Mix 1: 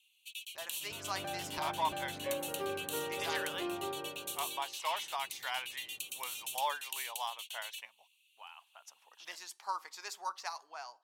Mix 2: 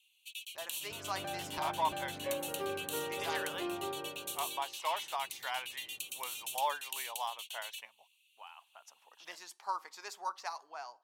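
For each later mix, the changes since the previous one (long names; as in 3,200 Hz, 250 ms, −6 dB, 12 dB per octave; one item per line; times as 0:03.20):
speech: add tilt shelving filter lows +3.5 dB, about 1,300 Hz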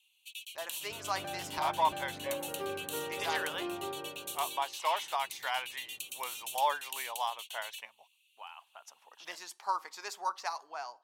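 speech +4.0 dB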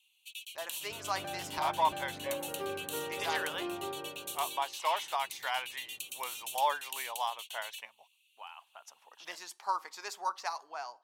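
nothing changed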